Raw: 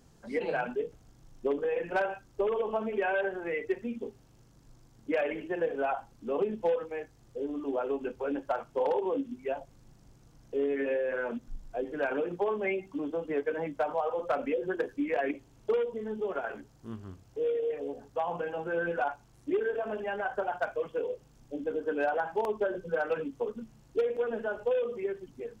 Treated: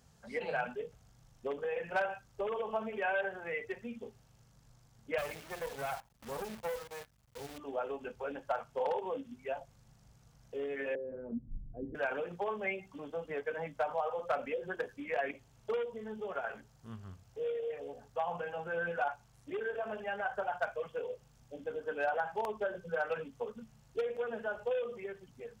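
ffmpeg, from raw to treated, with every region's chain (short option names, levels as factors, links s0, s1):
-filter_complex "[0:a]asettb=1/sr,asplit=3[s0][s1][s2];[s0]atrim=end=5.184[s3];[s1]atrim=start=5.18:end=7.58,asetpts=PTS-STARTPTS,afade=t=in:d=0.004:c=qsin,afade=t=out:st=2.396:d=0.004:c=qsin,lowshelf=f=180:g=5,acrusher=bits=8:dc=4:mix=0:aa=0.000001,aeval=exprs='(tanh(22.4*val(0)+0.8)-tanh(0.8))/22.4':c=same[s4];[s2]atrim=start=7.576[s5];[s3][s4]acrossfade=d=0.004:c1=hsin:c2=qsin[s6];[s6][s5]acrossfade=d=0.004:c1=qsin:c2=hsin,asettb=1/sr,asplit=3[s7][s8][s9];[s7]atrim=end=10.954[s10];[s8]atrim=start=10.95:end=11.95,asetpts=PTS-STARTPTS,afade=t=in:d=0.004:c=qsin,afade=t=out:st=0.996:d=0.004:c=qsin,lowpass=f=310:t=q:w=3,asubboost=boost=11.5:cutoff=200[s11];[s9]atrim=start=11.946[s12];[s10][s11]acrossfade=d=0.004:c1=hsin:c2=qsin[s13];[s13][s12]acrossfade=d=0.004:c1=qsin:c2=hsin,highpass=45,equalizer=f=320:t=o:w=0.74:g=-14.5,bandreject=f=1000:w=24,volume=0.841"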